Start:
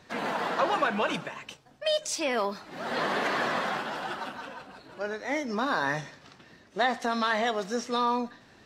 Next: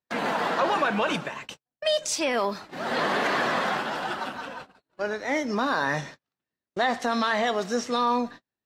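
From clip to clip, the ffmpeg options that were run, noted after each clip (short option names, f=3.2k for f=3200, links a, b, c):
-filter_complex "[0:a]agate=range=-41dB:threshold=-44dB:ratio=16:detection=peak,asplit=2[a][b];[b]alimiter=limit=-21dB:level=0:latency=1:release=16,volume=3dB[c];[a][c]amix=inputs=2:normalize=0,volume=-3.5dB"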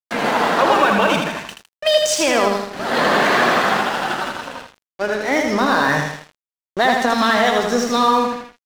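-af "aecho=1:1:80|160|240|320|400|480|560:0.631|0.347|0.191|0.105|0.0577|0.0318|0.0175,aeval=exprs='sgn(val(0))*max(abs(val(0))-0.0106,0)':c=same,volume=8.5dB"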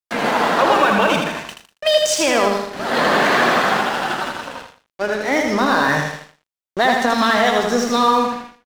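-af "aecho=1:1:118:0.15"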